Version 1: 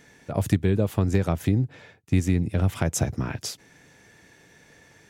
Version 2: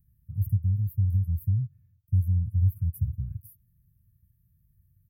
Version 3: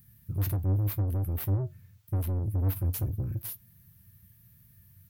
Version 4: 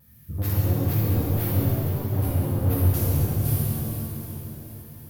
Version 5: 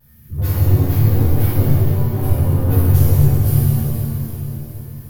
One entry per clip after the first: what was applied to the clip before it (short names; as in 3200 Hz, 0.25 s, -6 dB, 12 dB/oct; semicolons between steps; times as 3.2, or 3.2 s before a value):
inverse Chebyshev band-stop 300–7400 Hz, stop band 50 dB; comb 3.9 ms, depth 34%; gain +3.5 dB
overdrive pedal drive 36 dB, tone 7400 Hz, clips at -14.5 dBFS; flange 0.87 Hz, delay 8.7 ms, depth 2.5 ms, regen +65%; gain -3 dB
vibrato 2.5 Hz 74 cents; swung echo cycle 0.76 s, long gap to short 1.5:1, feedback 38%, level -12 dB; shimmer reverb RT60 2.5 s, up +7 st, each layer -8 dB, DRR -8.5 dB
shoebox room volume 120 m³, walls furnished, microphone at 3.3 m; gain -3 dB